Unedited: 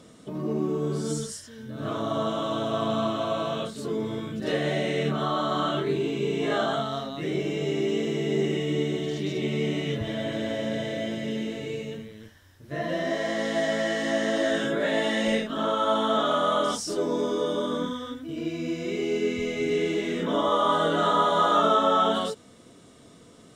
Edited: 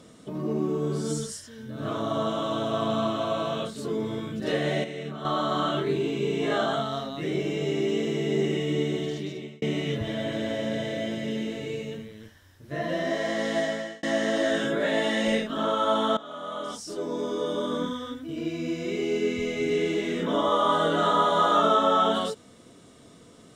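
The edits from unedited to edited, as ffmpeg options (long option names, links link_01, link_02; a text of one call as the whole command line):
ffmpeg -i in.wav -filter_complex "[0:a]asplit=6[link_01][link_02][link_03][link_04][link_05][link_06];[link_01]atrim=end=4.842[link_07];[link_02]atrim=start=4.838:end=5.252,asetpts=PTS-STARTPTS,volume=-9dB[link_08];[link_03]atrim=start=5.248:end=9.62,asetpts=PTS-STARTPTS,afade=type=out:start_time=3.782:duration=0.59[link_09];[link_04]atrim=start=9.62:end=14.03,asetpts=PTS-STARTPTS,afade=type=in:duration=0.004:curve=hsin,afade=type=out:start_time=3.96:duration=0.45[link_10];[link_05]atrim=start=14.03:end=16.17,asetpts=PTS-STARTPTS,afade=type=in:duration=0.004:curve=hsin,afade=type=out:start_time=2.136:duration=0.004:curve=hsin:silence=0.1[link_11];[link_06]atrim=start=16.17,asetpts=PTS-STARTPTS,afade=type=in:duration=1.65:silence=0.1[link_12];[link_07][link_08]acrossfade=duration=0.004:curve1=hsin:curve2=hsin[link_13];[link_09][link_10][link_11][link_12]concat=n=4:v=0:a=1[link_14];[link_13][link_14]acrossfade=duration=0.004:curve1=hsin:curve2=hsin" out.wav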